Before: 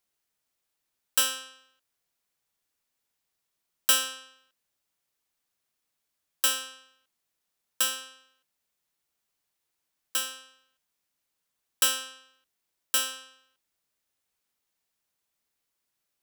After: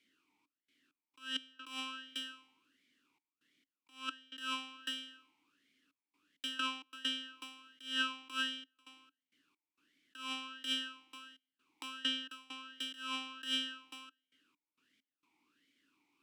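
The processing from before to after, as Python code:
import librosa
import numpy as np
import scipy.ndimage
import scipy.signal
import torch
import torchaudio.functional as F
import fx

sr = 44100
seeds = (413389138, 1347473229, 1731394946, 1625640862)

p1 = x + fx.echo_feedback(x, sr, ms=491, feedback_pct=15, wet_db=-9.5, dry=0)
p2 = fx.step_gate(p1, sr, bpm=66, pattern='xx.x.x.xxxxx', floor_db=-24.0, edge_ms=4.5)
p3 = fx.over_compress(p2, sr, threshold_db=-42.0, ratio=-1.0)
p4 = fx.vowel_sweep(p3, sr, vowels='i-u', hz=1.4)
y = F.gain(torch.from_numpy(p4), 17.0).numpy()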